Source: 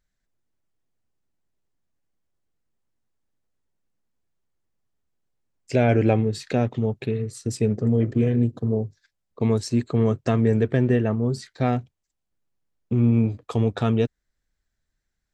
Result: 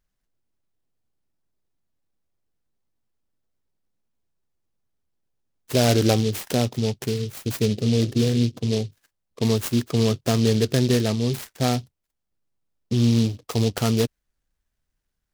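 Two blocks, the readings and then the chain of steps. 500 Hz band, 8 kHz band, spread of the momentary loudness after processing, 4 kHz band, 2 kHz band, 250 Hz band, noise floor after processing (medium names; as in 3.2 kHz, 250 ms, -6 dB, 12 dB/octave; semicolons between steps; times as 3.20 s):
0.0 dB, +10.5 dB, 8 LU, +12.5 dB, +1.0 dB, 0.0 dB, -79 dBFS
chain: dynamic bell 4.1 kHz, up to +6 dB, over -48 dBFS, Q 0.72; delay time shaken by noise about 3.9 kHz, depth 0.099 ms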